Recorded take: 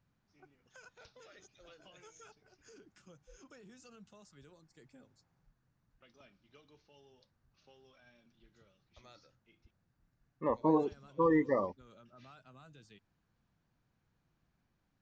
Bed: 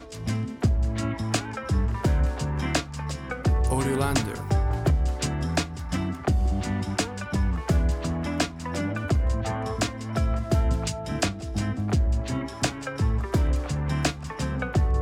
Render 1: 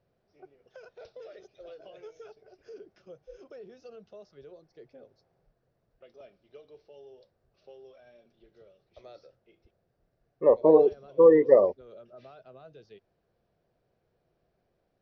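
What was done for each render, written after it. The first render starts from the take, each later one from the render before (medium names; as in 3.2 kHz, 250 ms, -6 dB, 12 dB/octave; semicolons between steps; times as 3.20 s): steep low-pass 5.8 kHz 72 dB/octave; high-order bell 510 Hz +14.5 dB 1.2 oct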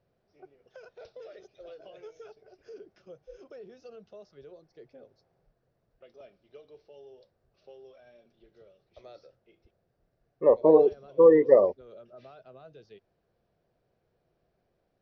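no audible change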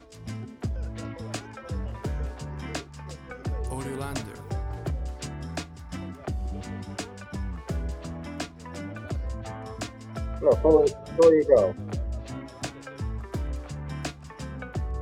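add bed -8.5 dB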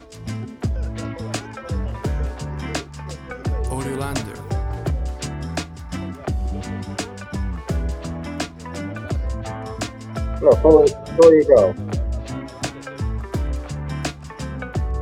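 trim +7.5 dB; peak limiter -1 dBFS, peak gain reduction 2.5 dB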